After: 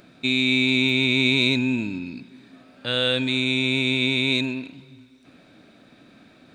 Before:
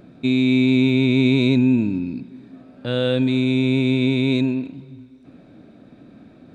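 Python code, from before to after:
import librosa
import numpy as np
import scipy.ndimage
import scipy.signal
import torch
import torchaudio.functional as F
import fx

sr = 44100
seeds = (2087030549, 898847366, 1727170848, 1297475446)

y = fx.tilt_shelf(x, sr, db=-8.5, hz=970.0)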